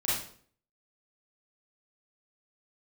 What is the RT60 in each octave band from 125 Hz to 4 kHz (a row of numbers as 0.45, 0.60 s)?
0.60, 0.60, 0.55, 0.50, 0.45, 0.45 s